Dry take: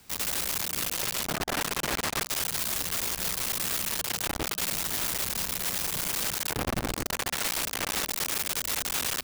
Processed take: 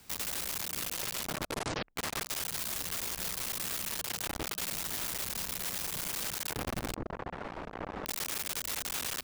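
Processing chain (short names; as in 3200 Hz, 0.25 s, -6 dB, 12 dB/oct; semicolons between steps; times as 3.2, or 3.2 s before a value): 1.32 tape stop 0.64 s; 6.95–8.06 LPF 1000 Hz 12 dB/oct; compressor, threshold -31 dBFS, peak gain reduction 6.5 dB; gain -1.5 dB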